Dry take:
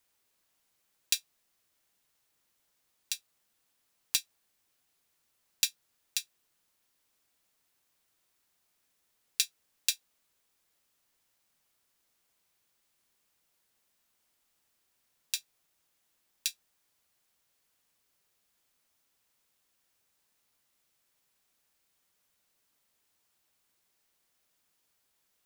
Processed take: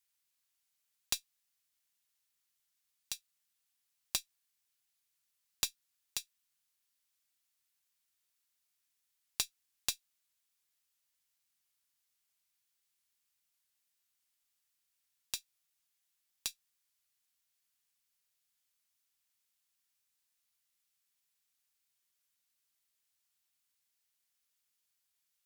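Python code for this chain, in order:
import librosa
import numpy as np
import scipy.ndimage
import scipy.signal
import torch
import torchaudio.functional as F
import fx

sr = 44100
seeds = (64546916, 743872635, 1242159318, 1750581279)

y = fx.tone_stack(x, sr, knobs='5-5-5')
y = fx.tube_stage(y, sr, drive_db=14.0, bias=0.75)
y = F.gain(torch.from_numpy(y), 5.0).numpy()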